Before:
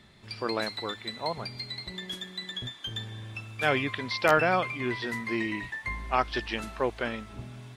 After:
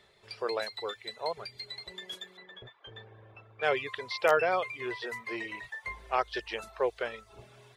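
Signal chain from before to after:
reverb reduction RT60 0.52 s
low shelf with overshoot 340 Hz −8 dB, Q 3
0:02.37–0:03.84: low-pass that shuts in the quiet parts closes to 1,100 Hz, open at −19.5 dBFS
level −4 dB

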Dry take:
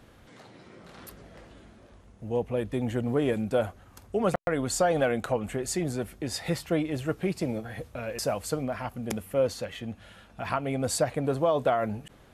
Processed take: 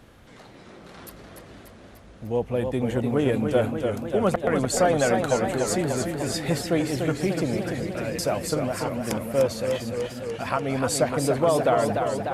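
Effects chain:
feedback echo with a swinging delay time 296 ms, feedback 70%, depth 119 cents, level −5.5 dB
level +3 dB

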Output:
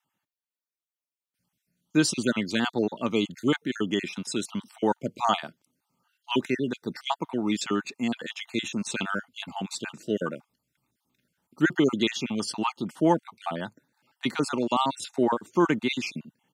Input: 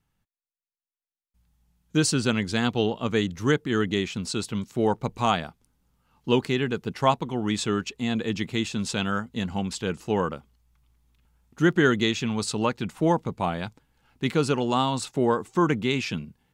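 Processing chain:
time-frequency cells dropped at random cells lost 39%
high-pass filter 140 Hz 24 dB per octave
comb filter 3.3 ms, depth 30%

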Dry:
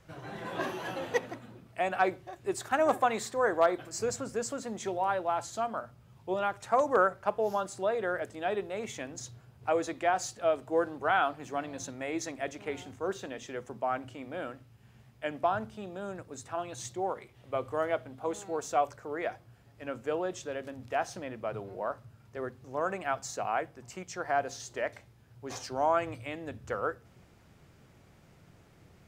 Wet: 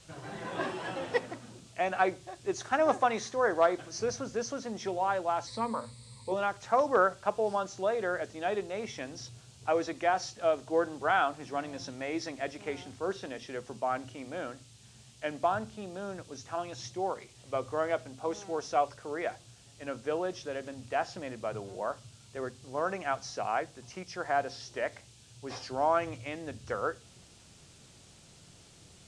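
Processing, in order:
hearing-aid frequency compression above 4,000 Hz 1.5 to 1
noise in a band 2,500–8,900 Hz −60 dBFS
0:05.47–0:06.32: EQ curve with evenly spaced ripples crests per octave 0.96, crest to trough 16 dB

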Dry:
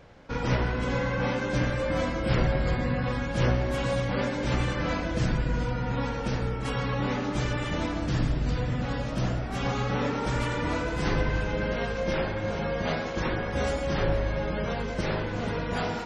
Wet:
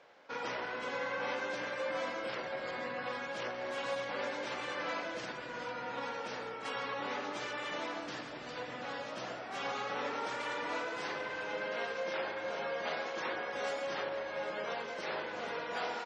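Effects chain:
brickwall limiter −19.5 dBFS, peak gain reduction 7 dB
band-pass filter 520–6,300 Hz
single-tap delay 790 ms −14.5 dB
level −4 dB

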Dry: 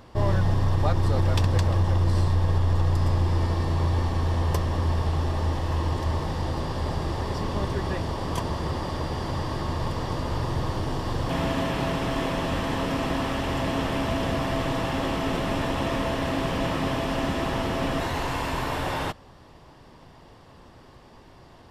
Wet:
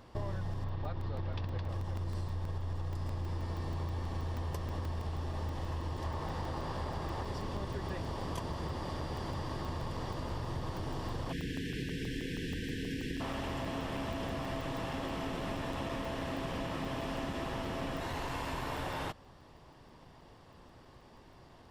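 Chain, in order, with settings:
0:00.64–0:01.69: low-pass filter 4,400 Hz 24 dB per octave
0:06.04–0:07.23: parametric band 1,100 Hz +4.5 dB 2.2 octaves
0:11.33–0:13.21: time-frequency box erased 500–1,500 Hz
downward compressor, threshold −27 dBFS, peak gain reduction 10.5 dB
regular buffer underruns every 0.16 s, samples 128, zero, from 0:00.53
level −6.5 dB

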